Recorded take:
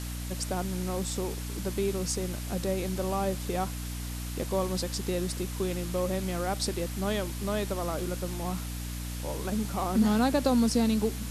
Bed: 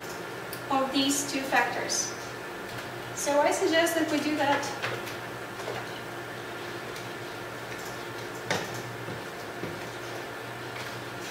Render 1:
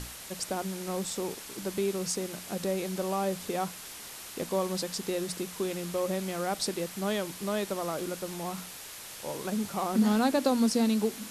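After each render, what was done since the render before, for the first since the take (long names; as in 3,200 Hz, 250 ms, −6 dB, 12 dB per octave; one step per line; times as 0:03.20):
mains-hum notches 60/120/180/240/300 Hz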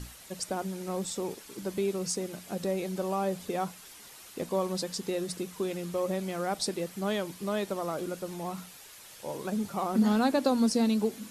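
broadband denoise 8 dB, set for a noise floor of −44 dBFS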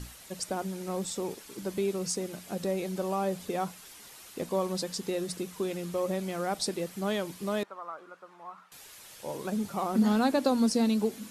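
0:07.63–0:08.72: resonant band-pass 1,200 Hz, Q 2.7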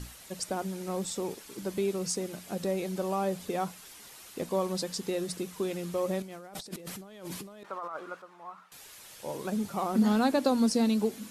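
0:06.22–0:08.22: compressor whose output falls as the input rises −43 dBFS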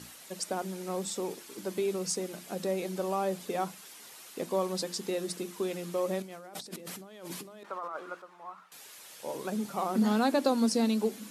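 high-pass filter 180 Hz 12 dB per octave
mains-hum notches 50/100/150/200/250/300/350 Hz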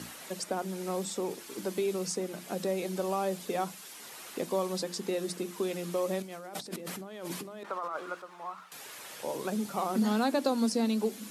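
multiband upward and downward compressor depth 40%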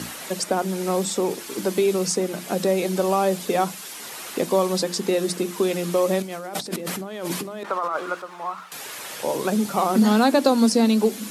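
level +10.5 dB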